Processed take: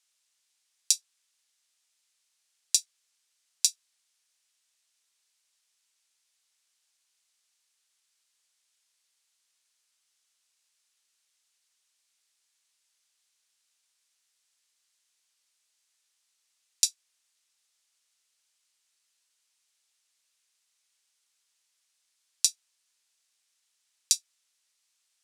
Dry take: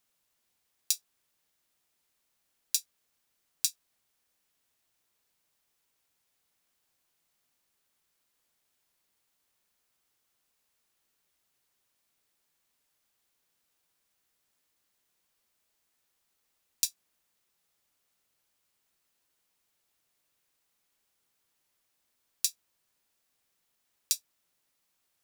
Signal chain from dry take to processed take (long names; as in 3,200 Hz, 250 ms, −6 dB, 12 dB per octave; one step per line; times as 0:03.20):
meter weighting curve ITU-R 468
level −5.5 dB